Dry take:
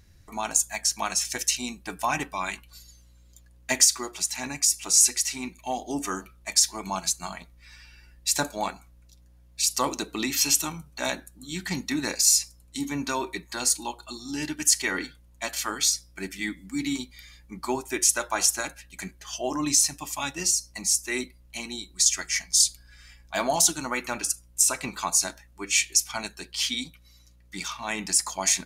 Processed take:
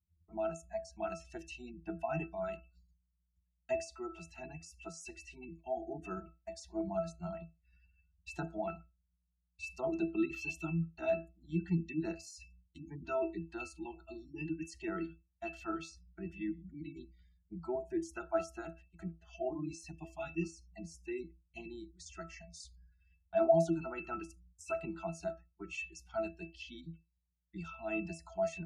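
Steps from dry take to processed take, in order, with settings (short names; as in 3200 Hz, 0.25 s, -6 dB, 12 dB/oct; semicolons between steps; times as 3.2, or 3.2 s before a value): spectral gate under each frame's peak -20 dB strong; expander -42 dBFS; octave resonator E, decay 0.22 s; gain +8 dB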